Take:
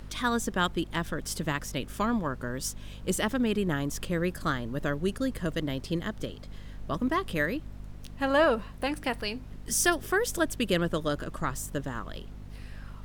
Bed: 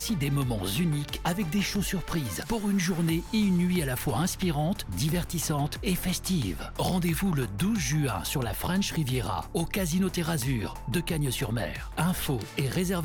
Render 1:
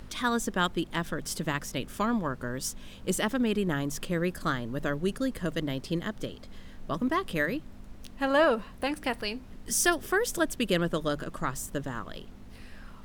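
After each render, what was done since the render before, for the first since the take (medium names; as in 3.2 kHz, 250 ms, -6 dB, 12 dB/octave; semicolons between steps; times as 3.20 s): de-hum 50 Hz, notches 3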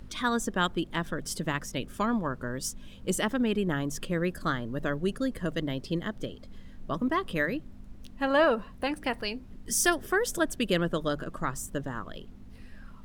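noise reduction 7 dB, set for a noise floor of -47 dBFS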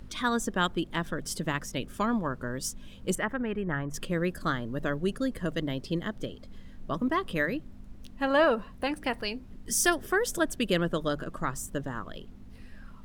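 3.15–3.94 s: FFT filter 140 Hz 0 dB, 230 Hz -6 dB, 1.9 kHz +2 dB, 4 kHz -18 dB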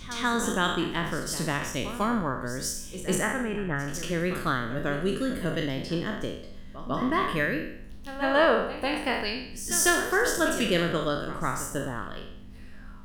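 spectral sustain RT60 0.69 s; pre-echo 149 ms -12.5 dB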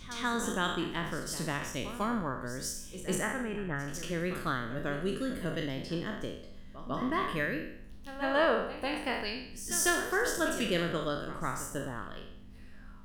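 trim -5.5 dB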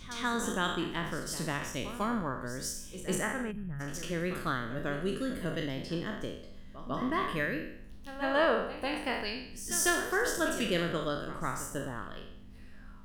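3.51–3.80 s: time-frequency box 240–10000 Hz -17 dB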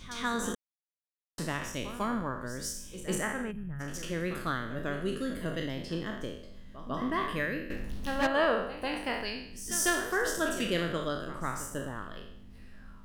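0.55–1.38 s: mute; 7.70–8.27 s: waveshaping leveller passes 3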